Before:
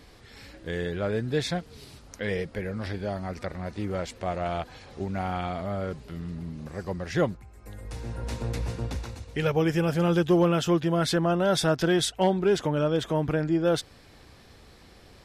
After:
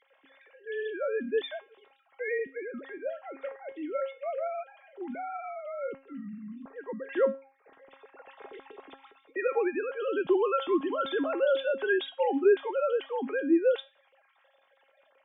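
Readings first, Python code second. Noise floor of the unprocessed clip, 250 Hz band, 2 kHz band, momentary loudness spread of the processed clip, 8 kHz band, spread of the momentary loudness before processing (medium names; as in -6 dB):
-52 dBFS, -6.5 dB, -1.5 dB, 17 LU, under -40 dB, 14 LU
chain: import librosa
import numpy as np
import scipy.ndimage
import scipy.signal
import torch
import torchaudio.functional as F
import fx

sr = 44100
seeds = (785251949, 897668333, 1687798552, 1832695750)

y = fx.sine_speech(x, sr)
y = fx.comb_fb(y, sr, f0_hz=270.0, decay_s=0.32, harmonics='all', damping=0.0, mix_pct=80)
y = y * 10.0 ** (8.0 / 20.0)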